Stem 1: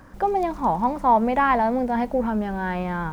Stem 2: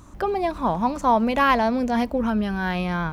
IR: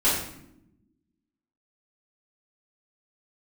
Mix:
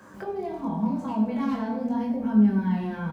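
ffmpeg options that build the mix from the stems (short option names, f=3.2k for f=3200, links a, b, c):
-filter_complex "[0:a]alimiter=limit=-16dB:level=0:latency=1,volume=-1dB,asplit=2[a][b];[b]volume=-12.5dB[c];[1:a]aeval=exprs='0.251*(abs(mod(val(0)/0.251+3,4)-2)-1)':c=same,adelay=4.3,volume=-8.5dB,asplit=2[d][e];[e]volume=-10.5dB[f];[2:a]atrim=start_sample=2205[g];[c][f]amix=inputs=2:normalize=0[h];[h][g]afir=irnorm=-1:irlink=0[i];[a][d][i]amix=inputs=3:normalize=0,highpass=f=98:w=0.5412,highpass=f=98:w=1.3066,acrossover=split=280[j][k];[k]acompressor=threshold=-42dB:ratio=2[l];[j][l]amix=inputs=2:normalize=0,flanger=delay=19.5:depth=5.7:speed=0.84"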